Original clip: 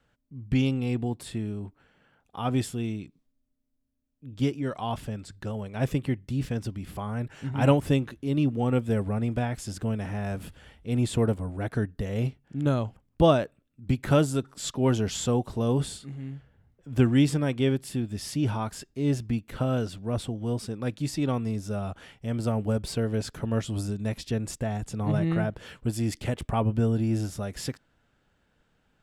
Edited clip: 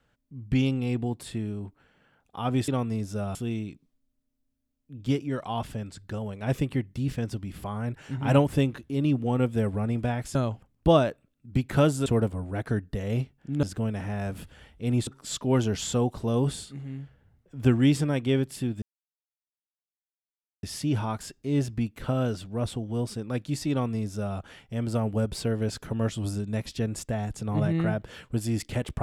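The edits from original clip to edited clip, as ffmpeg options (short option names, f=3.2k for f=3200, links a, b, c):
-filter_complex "[0:a]asplit=8[a][b][c][d][e][f][g][h];[a]atrim=end=2.682[i];[b]atrim=start=21.228:end=21.902[j];[c]atrim=start=2.678:end=9.682[k];[d]atrim=start=12.688:end=14.402[l];[e]atrim=start=11.118:end=12.692[m];[f]atrim=start=9.678:end=11.122[n];[g]atrim=start=14.398:end=18.15,asetpts=PTS-STARTPTS,afade=t=out:st=3.748:d=0.004:c=hsin,apad=pad_dur=1.81[o];[h]atrim=start=18.15,asetpts=PTS-STARTPTS,afade=t=in:d=0.004:c=hsin[p];[i][j]acrossfade=d=0.004:c1=hsin:c2=hsin[q];[q][k]acrossfade=d=0.004:c1=hsin:c2=hsin[r];[r][l]acrossfade=d=0.004:c1=hsin:c2=hsin[s];[s][m]acrossfade=d=0.004:c1=hsin:c2=hsin[t];[t][n]acrossfade=d=0.004:c1=hsin:c2=hsin[u];[o][p]concat=n=2:v=0:a=1[v];[u][v]acrossfade=d=0.004:c1=hsin:c2=hsin"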